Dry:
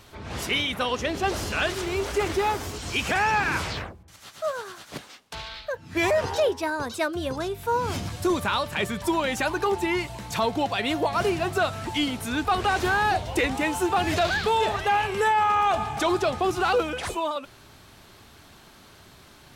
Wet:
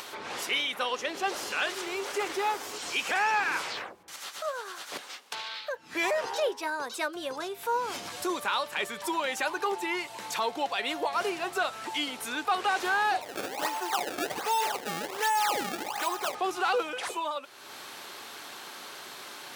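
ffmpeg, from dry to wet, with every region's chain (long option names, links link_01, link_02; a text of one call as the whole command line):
ffmpeg -i in.wav -filter_complex "[0:a]asettb=1/sr,asplit=3[link_01][link_02][link_03];[link_01]atrim=end=13.214[link_04];[link_02]atrim=start=13.21:end=16.35,asetpts=PTS-STARTPTS,afade=type=in:duration=0.004:curve=qsin,afade=type=out:start_time=3.136:duration=0.004:curve=qsin,aecho=1:1:1.1:0.32,atrim=end_sample=138474,acrossover=split=410|3700[link_05][link_06][link_07];[link_05]acompressor=threshold=-37dB:ratio=4[link_08];[link_06]acompressor=threshold=-21dB:ratio=4[link_09];[link_07]acompressor=threshold=-37dB:ratio=4[link_10];[link_08][link_09][link_10]amix=inputs=3:normalize=0,acrusher=samples=25:mix=1:aa=0.000001:lfo=1:lforange=40:lforate=1.3[link_11];[link_03]atrim=start=16.346[link_12];[link_04][link_11]acrossfade=duration=0.004:curve1=hsin:curve2=qsin[link_13];[link_13][link_12]acrossfade=duration=0.004:curve1=qsin:curve2=hsin,highpass=460,bandreject=frequency=650:width=13,acompressor=mode=upward:threshold=-28dB:ratio=2.5,volume=-3dB" out.wav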